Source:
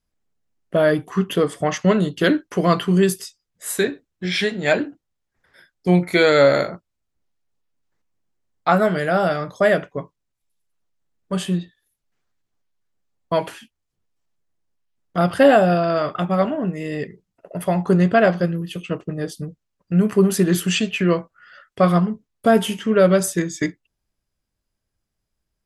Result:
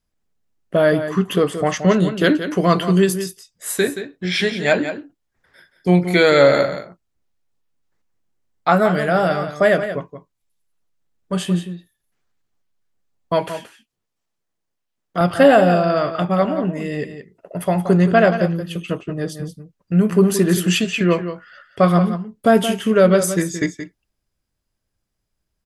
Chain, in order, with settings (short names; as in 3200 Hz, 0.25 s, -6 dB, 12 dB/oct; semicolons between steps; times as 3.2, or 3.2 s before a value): 13.49–15.21 low shelf 150 Hz -10.5 dB; on a send: echo 0.175 s -10.5 dB; on the sum: gain +1.5 dB